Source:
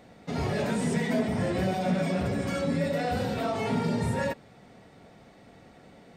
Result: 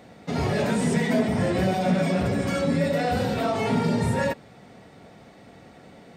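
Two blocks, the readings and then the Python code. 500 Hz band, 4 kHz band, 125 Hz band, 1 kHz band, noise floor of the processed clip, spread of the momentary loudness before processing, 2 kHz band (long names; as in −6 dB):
+4.5 dB, +4.5 dB, +4.5 dB, +4.5 dB, −50 dBFS, 4 LU, +4.5 dB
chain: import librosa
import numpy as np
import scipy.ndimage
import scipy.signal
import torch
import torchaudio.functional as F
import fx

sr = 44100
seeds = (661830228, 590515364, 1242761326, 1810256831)

y = scipy.signal.sosfilt(scipy.signal.butter(2, 54.0, 'highpass', fs=sr, output='sos'), x)
y = F.gain(torch.from_numpy(y), 4.5).numpy()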